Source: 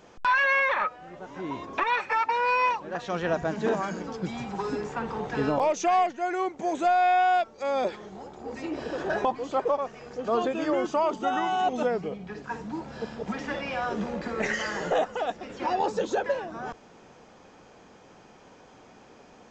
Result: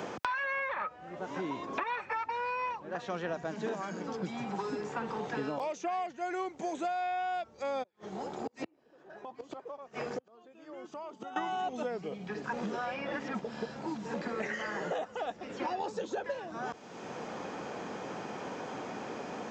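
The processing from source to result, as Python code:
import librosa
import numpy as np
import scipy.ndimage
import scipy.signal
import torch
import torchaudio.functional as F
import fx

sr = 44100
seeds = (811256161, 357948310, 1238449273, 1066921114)

y = fx.gate_flip(x, sr, shuts_db=-26.0, range_db=-39, at=(7.82, 11.36), fade=0.02)
y = fx.edit(y, sr, fx.reverse_span(start_s=12.53, length_s=1.61), tone=tone)
y = scipy.signal.sosfilt(scipy.signal.butter(2, 100.0, 'highpass', fs=sr, output='sos'), y)
y = fx.band_squash(y, sr, depth_pct=100)
y = F.gain(torch.from_numpy(y), -8.5).numpy()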